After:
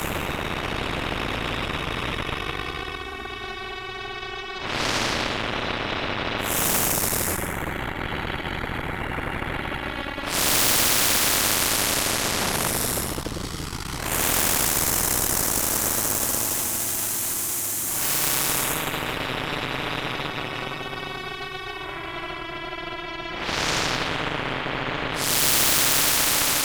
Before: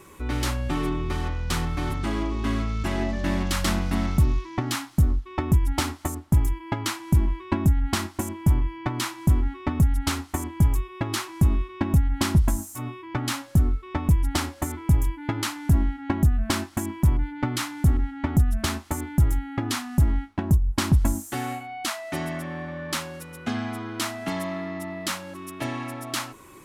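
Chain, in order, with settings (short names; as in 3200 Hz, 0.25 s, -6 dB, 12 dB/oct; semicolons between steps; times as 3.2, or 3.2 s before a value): compressor 5:1, threshold -20 dBFS, peak gain reduction 6.5 dB; Paulstretch 14×, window 0.05 s, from 11.46; frequency shift +17 Hz; added harmonics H 8 -10 dB, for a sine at -9 dBFS; spectral compressor 4:1; gain +3 dB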